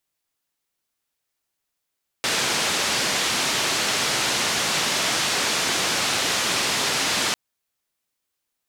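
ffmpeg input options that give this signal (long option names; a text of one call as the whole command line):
ffmpeg -f lavfi -i "anoisesrc=color=white:duration=5.1:sample_rate=44100:seed=1,highpass=frequency=120,lowpass=frequency=5800,volume=-12.6dB" out.wav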